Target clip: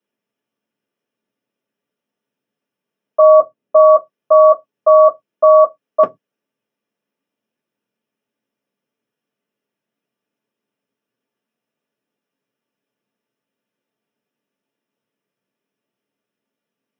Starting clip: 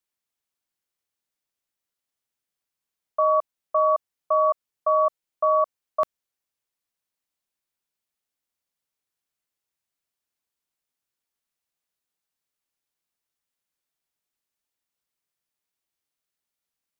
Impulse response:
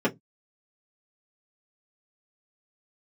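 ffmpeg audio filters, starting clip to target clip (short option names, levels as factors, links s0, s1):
-filter_complex "[0:a]asplit=3[s0][s1][s2];[s0]afade=t=out:st=3.2:d=0.02[s3];[s1]tiltshelf=f=800:g=4.5,afade=t=in:st=3.2:d=0.02,afade=t=out:st=3.78:d=0.02[s4];[s2]afade=t=in:st=3.78:d=0.02[s5];[s3][s4][s5]amix=inputs=3:normalize=0[s6];[1:a]atrim=start_sample=2205[s7];[s6][s7]afir=irnorm=-1:irlink=0,volume=0.708"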